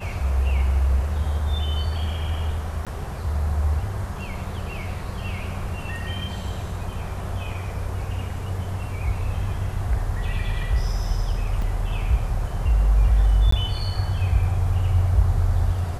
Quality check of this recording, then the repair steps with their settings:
0:02.85–0:02.87: drop-out 17 ms
0:11.62: drop-out 2.3 ms
0:13.51–0:13.52: drop-out 14 ms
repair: repair the gap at 0:02.85, 17 ms
repair the gap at 0:11.62, 2.3 ms
repair the gap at 0:13.51, 14 ms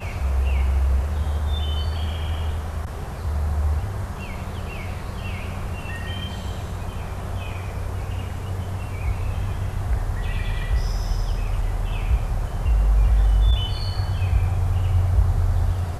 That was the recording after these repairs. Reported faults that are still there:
none of them is left

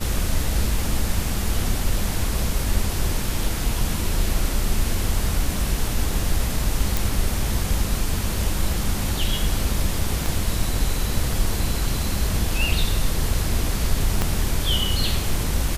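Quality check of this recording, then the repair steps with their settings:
0:06.97: click
0:10.26: click
0:14.22: click −6 dBFS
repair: click removal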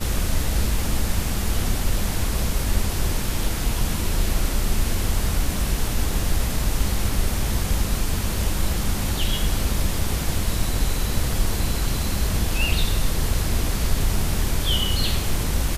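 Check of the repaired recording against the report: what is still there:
0:10.26: click
0:14.22: click

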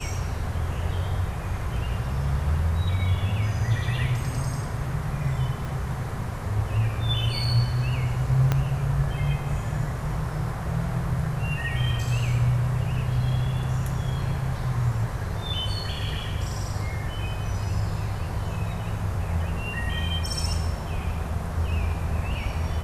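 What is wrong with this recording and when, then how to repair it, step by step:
0:05.65: click
0:08.52: click −10 dBFS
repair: click removal

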